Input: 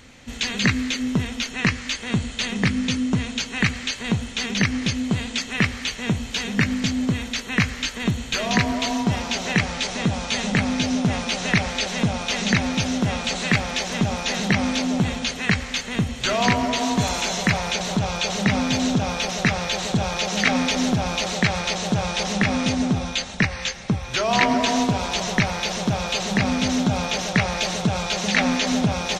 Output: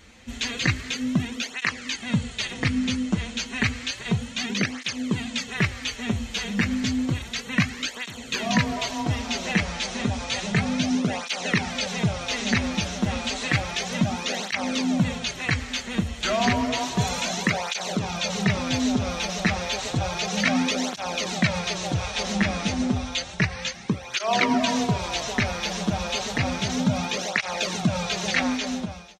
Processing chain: fade out at the end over 0.84 s; cancelling through-zero flanger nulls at 0.31 Hz, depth 8 ms

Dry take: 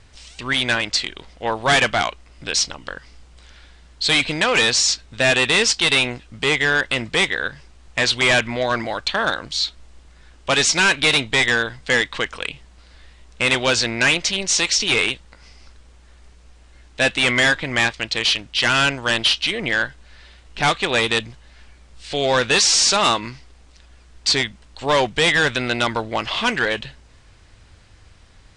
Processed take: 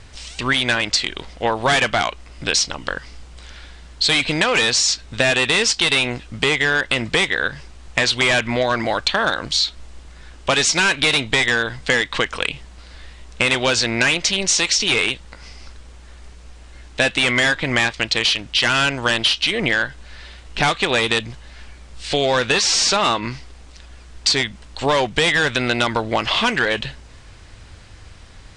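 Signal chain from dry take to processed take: 22.52–23.31 s: treble shelf 6.5 kHz -10.5 dB; compression, threshold -22 dBFS, peak gain reduction 8.5 dB; trim +7 dB

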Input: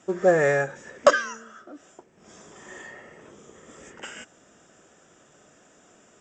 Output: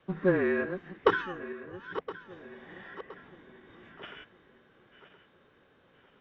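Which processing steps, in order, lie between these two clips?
backward echo that repeats 509 ms, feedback 62%, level -12.5 dB; mistuned SSB -190 Hz 300–3500 Hz; formant shift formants +2 st; trim -6 dB

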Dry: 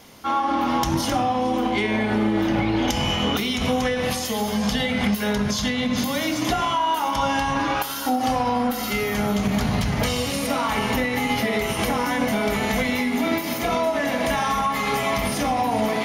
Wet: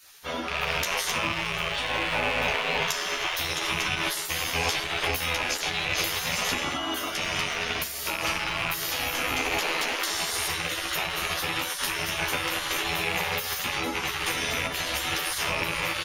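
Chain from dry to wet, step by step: rattle on loud lows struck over -31 dBFS, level -16 dBFS; spectral gate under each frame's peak -15 dB weak; doubling 12 ms -3 dB

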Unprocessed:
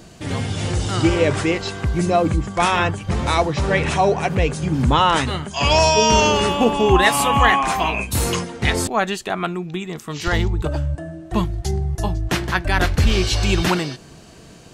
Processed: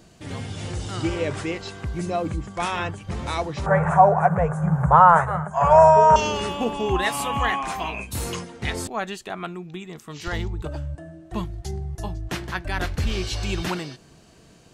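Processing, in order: 3.66–6.16 s: FFT filter 110 Hz 0 dB, 170 Hz +14 dB, 260 Hz -25 dB, 440 Hz +3 dB, 650 Hz +14 dB, 1.5 kHz +12 dB, 2.8 kHz -17 dB, 4.7 kHz -25 dB, 7.1 kHz -4 dB; trim -8.5 dB

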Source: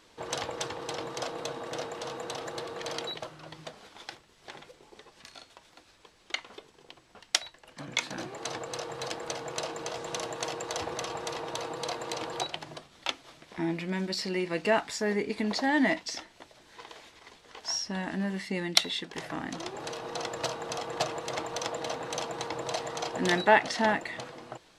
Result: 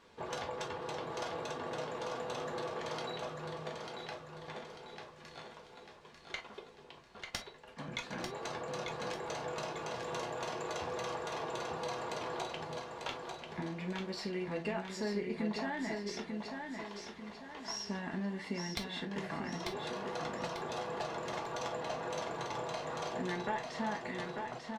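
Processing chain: single-diode clipper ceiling -15.5 dBFS; treble shelf 3.7 kHz -11.5 dB; compression 5:1, threshold -35 dBFS, peak gain reduction 16.5 dB; feedback delay 894 ms, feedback 42%, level -5 dB; gated-style reverb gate 80 ms falling, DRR 1.5 dB; trim -2.5 dB

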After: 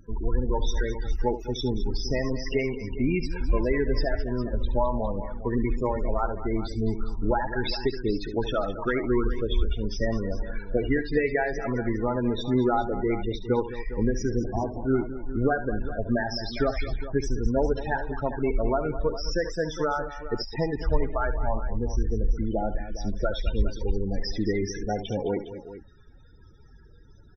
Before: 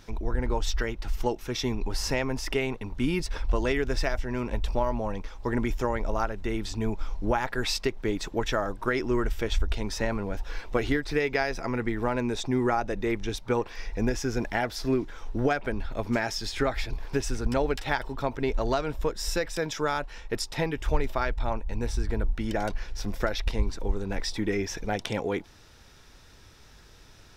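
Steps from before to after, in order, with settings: 14.37–15.51 s: sample-rate reducer 1.8 kHz, jitter 20%; loudest bins only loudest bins 16; multi-tap echo 71/212/408 ms -12.5/-13.5/-14 dB; trim +2 dB

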